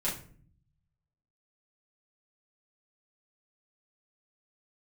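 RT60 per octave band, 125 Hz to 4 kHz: 1.4, 0.95, 0.55, 0.40, 0.40, 0.30 seconds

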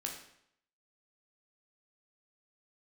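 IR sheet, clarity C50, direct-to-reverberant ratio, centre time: 6.0 dB, 0.0 dB, 29 ms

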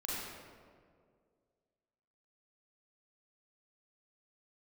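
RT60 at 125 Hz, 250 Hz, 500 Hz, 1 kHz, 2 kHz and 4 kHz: 2.2, 2.3, 2.3, 1.8, 1.4, 1.0 seconds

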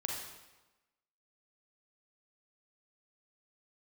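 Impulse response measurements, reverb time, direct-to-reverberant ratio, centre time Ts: 1.1 s, −1.0 dB, 60 ms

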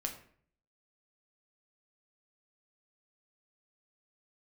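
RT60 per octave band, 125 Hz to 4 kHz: 0.75, 0.65, 0.60, 0.50, 0.50, 0.40 seconds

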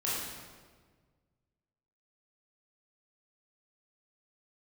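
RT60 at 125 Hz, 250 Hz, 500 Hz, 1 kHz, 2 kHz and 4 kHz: 2.2, 1.8, 1.7, 1.4, 1.3, 1.1 seconds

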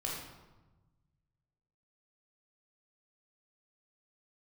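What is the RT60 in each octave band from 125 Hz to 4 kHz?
2.2, 1.6, 1.2, 1.1, 0.85, 0.75 seconds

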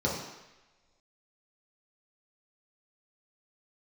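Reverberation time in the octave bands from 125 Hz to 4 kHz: 0.90, 0.90, 1.0, 1.1, 1.2, 1.1 seconds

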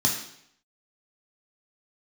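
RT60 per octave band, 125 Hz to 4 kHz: 0.70, 0.70, 0.70, 0.70, 0.70, 0.70 seconds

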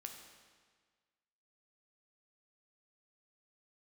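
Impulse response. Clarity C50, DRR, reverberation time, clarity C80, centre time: 5.5 dB, 3.0 dB, 1.6 s, 7.0 dB, 41 ms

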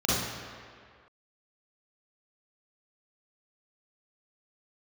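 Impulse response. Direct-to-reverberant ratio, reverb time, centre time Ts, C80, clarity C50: −9.0 dB, 2.0 s, 118 ms, 1.0 dB, −3.5 dB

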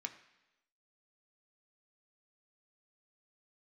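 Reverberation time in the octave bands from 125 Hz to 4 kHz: 0.85, 0.95, 1.0, 0.95, 1.0, 1.0 seconds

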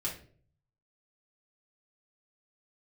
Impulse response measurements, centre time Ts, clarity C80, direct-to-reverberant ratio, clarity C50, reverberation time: 23 ms, 13.5 dB, −5.0 dB, 8.0 dB, 0.50 s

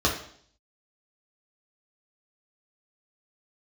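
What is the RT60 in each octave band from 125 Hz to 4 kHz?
0.65, 0.65, 0.60, 0.55, 0.55, 0.65 seconds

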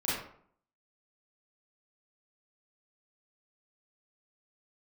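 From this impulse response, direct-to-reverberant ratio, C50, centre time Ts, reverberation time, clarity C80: −9.5 dB, −0.5 dB, 63 ms, 0.60 s, 4.5 dB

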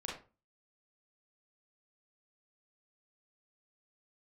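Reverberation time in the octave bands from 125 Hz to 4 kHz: 0.45, 0.40, 0.35, 0.30, 0.25, 0.20 seconds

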